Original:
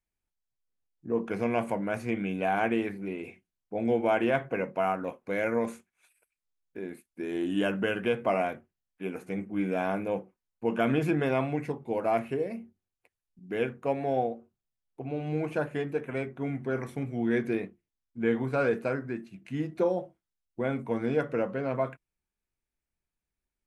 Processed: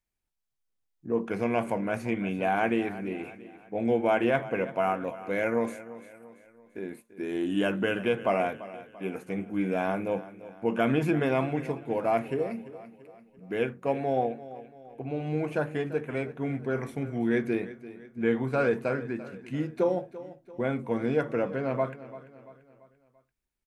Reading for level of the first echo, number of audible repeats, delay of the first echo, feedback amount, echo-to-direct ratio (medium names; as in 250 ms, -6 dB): -16.0 dB, 3, 340 ms, 46%, -15.0 dB